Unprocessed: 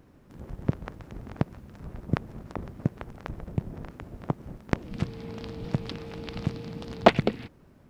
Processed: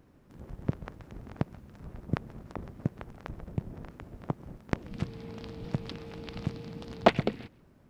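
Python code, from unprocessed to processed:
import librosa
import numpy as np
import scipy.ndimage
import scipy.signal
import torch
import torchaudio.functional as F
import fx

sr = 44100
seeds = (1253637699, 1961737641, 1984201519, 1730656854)

y = x + 10.0 ** (-23.0 / 20.0) * np.pad(x, (int(133 * sr / 1000.0), 0))[:len(x)]
y = y * librosa.db_to_amplitude(-4.0)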